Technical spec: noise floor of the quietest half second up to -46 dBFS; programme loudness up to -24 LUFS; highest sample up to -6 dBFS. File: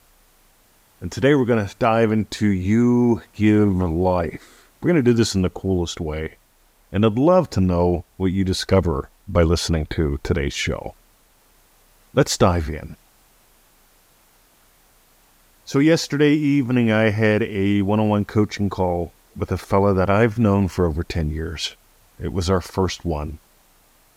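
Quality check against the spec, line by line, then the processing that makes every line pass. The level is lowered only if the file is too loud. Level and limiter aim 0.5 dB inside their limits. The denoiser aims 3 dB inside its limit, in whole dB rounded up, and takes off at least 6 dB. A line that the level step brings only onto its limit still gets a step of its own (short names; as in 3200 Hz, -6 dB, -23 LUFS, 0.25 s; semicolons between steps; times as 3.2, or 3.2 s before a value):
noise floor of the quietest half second -57 dBFS: OK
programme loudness -20.0 LUFS: fail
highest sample -3.5 dBFS: fail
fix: gain -4.5 dB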